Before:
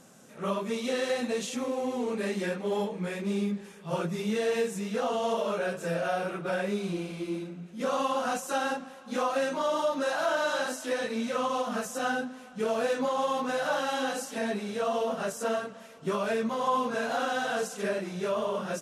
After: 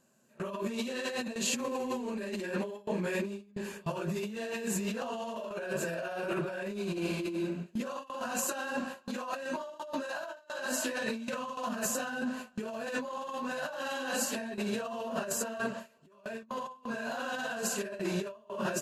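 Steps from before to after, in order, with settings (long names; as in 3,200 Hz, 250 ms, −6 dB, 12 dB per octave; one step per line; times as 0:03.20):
EQ curve with evenly spaced ripples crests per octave 1.4, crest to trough 8 dB
compressor whose output falls as the input rises −36 dBFS, ratio −1
noise gate with hold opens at −29 dBFS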